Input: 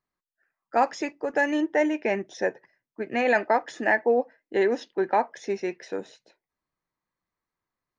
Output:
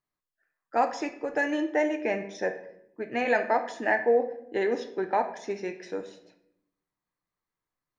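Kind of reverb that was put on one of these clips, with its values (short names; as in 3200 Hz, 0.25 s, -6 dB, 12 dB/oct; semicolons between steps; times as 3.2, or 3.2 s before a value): shoebox room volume 170 m³, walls mixed, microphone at 0.45 m; gain -3.5 dB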